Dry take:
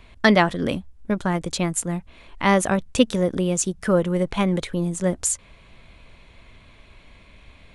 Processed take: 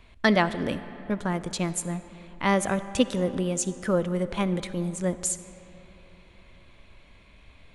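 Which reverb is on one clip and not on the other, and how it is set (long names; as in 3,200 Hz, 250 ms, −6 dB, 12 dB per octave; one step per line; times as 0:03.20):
comb and all-pass reverb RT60 3.6 s, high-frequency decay 0.55×, pre-delay 20 ms, DRR 13.5 dB
level −5 dB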